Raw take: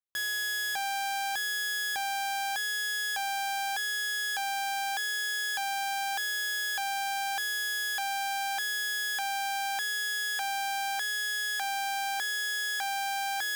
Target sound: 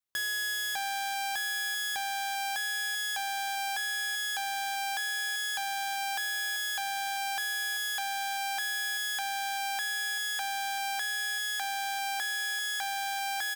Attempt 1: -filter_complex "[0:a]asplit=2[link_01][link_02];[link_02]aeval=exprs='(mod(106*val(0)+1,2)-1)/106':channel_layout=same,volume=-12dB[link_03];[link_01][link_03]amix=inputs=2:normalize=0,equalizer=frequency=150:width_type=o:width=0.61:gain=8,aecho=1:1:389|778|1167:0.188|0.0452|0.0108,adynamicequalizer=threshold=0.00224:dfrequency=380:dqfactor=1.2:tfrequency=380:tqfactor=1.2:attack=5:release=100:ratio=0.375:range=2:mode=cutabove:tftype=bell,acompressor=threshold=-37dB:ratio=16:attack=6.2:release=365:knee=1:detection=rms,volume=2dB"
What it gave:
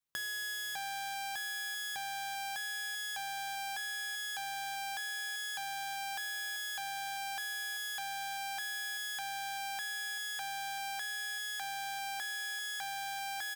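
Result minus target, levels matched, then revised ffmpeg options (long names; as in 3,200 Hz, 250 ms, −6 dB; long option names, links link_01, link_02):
125 Hz band +7.0 dB; downward compressor: peak gain reduction +6 dB
-filter_complex "[0:a]asplit=2[link_01][link_02];[link_02]aeval=exprs='(mod(106*val(0)+1,2)-1)/106':channel_layout=same,volume=-12dB[link_03];[link_01][link_03]amix=inputs=2:normalize=0,aecho=1:1:389|778|1167:0.188|0.0452|0.0108,adynamicequalizer=threshold=0.00224:dfrequency=380:dqfactor=1.2:tfrequency=380:tqfactor=1.2:attack=5:release=100:ratio=0.375:range=2:mode=cutabove:tftype=bell,acompressor=threshold=-30dB:ratio=16:attack=6.2:release=365:knee=1:detection=rms,volume=2dB"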